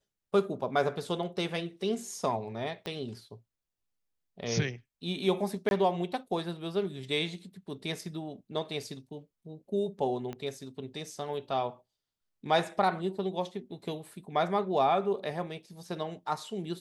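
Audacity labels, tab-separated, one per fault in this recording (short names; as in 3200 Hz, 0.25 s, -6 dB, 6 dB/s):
2.860000	2.860000	pop -22 dBFS
5.690000	5.710000	gap 21 ms
10.330000	10.330000	pop -25 dBFS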